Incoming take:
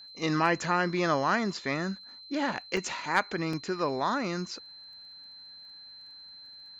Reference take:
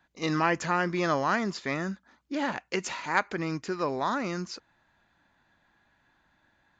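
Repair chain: clip repair -13 dBFS; de-click; band-stop 4.1 kHz, Q 30; interpolate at 2.77/3.53 s, 3 ms

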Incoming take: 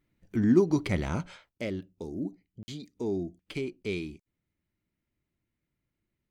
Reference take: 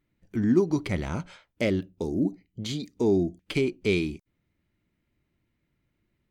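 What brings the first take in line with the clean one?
interpolate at 2.63 s, 50 ms; interpolate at 1.58/3.83 s, 11 ms; gain correction +8.5 dB, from 1.49 s

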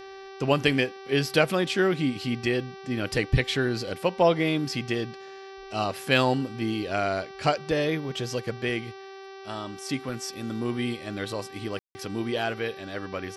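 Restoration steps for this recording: de-hum 387.7 Hz, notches 15; room tone fill 11.79–11.95 s

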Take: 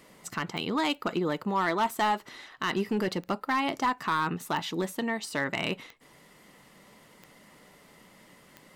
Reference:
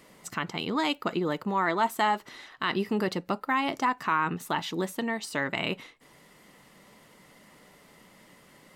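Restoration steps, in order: clip repair -20.5 dBFS; de-click

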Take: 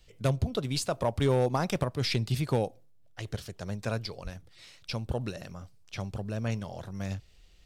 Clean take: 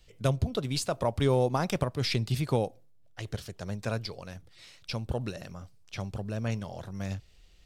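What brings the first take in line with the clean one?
clip repair -18.5 dBFS; 4.23–4.35 s: high-pass 140 Hz 24 dB/octave

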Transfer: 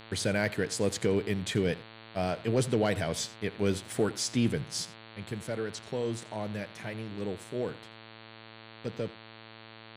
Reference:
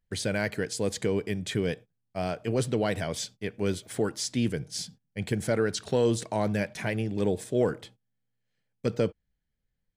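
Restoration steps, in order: clip repair -16.5 dBFS; de-hum 111.5 Hz, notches 40; inverse comb 85 ms -19 dB; gain correction +8.5 dB, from 4.85 s

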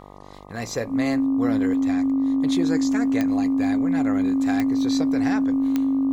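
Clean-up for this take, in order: de-click; de-hum 49.1 Hz, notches 25; band-stop 270 Hz, Q 30

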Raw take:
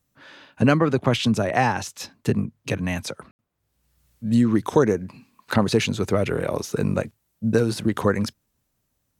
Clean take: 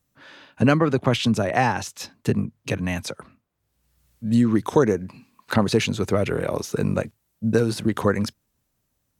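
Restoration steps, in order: room tone fill 3.31–3.39 s

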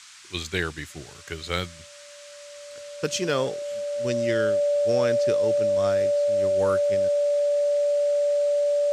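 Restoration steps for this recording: clip repair -11.5 dBFS; band-stop 580 Hz, Q 30; noise print and reduce 26 dB

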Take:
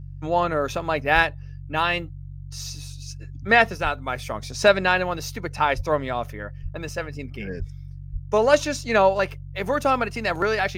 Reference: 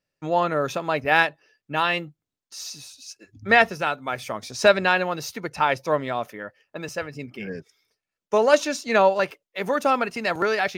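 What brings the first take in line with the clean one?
de-hum 47 Hz, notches 3; de-plosive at 1.14/3.83/5.76/6.62/7.58/8.12 s

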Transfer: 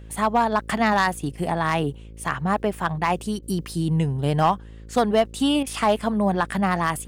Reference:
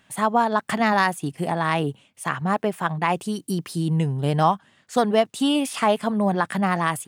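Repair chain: clip repair -10.5 dBFS; de-hum 54.6 Hz, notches 10; interpolate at 3.39/5.63 s, 34 ms

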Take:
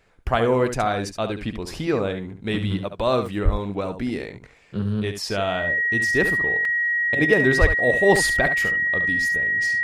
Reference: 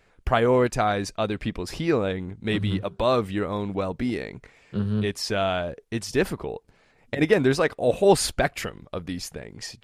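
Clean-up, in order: band-stop 1.9 kHz, Q 30; 3.44–3.56 s: high-pass 140 Hz 24 dB/octave; 7.60–7.72 s: high-pass 140 Hz 24 dB/octave; interpolate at 3.26/6.65/8.16 s, 2.7 ms; inverse comb 70 ms -9 dB

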